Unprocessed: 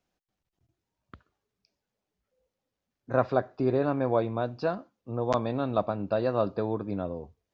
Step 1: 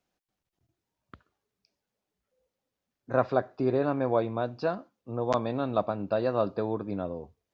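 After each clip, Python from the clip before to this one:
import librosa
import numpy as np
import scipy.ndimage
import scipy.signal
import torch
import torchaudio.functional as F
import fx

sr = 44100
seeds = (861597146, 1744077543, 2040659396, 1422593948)

y = fx.low_shelf(x, sr, hz=100.0, db=-5.5)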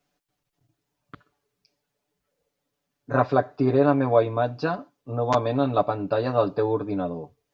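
y = x + 0.88 * np.pad(x, (int(6.9 * sr / 1000.0), 0))[:len(x)]
y = y * 10.0 ** (3.5 / 20.0)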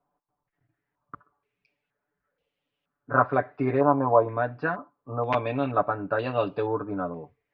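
y = fx.filter_held_lowpass(x, sr, hz=2.1, low_hz=990.0, high_hz=2900.0)
y = y * 10.0 ** (-4.5 / 20.0)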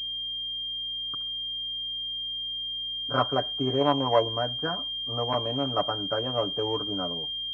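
y = fx.add_hum(x, sr, base_hz=60, snr_db=27)
y = fx.pwm(y, sr, carrier_hz=3200.0)
y = y * 10.0 ** (-2.5 / 20.0)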